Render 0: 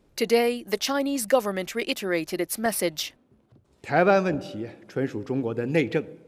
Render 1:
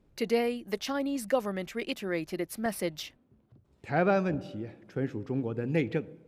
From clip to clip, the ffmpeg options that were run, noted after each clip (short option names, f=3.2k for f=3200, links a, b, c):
-af "bass=f=250:g=6,treble=f=4k:g=-5,volume=-7dB"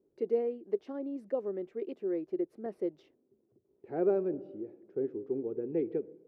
-af "bandpass=f=390:t=q:w=4.7:csg=0,volume=4.5dB"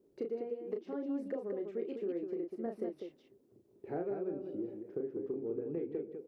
-af "acompressor=threshold=-39dB:ratio=10,aecho=1:1:34.99|198.3:0.562|0.501,volume=3.5dB"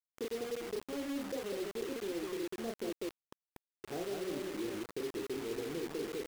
-af "areverse,acompressor=threshold=-47dB:ratio=6,areverse,acrusher=bits=8:mix=0:aa=0.000001,volume=10dB"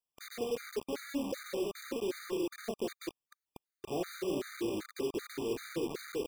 -af "afftfilt=real='re*gt(sin(2*PI*2.6*pts/sr)*(1-2*mod(floor(b*sr/1024/1200),2)),0)':imag='im*gt(sin(2*PI*2.6*pts/sr)*(1-2*mod(floor(b*sr/1024/1200),2)),0)':win_size=1024:overlap=0.75,volume=5dB"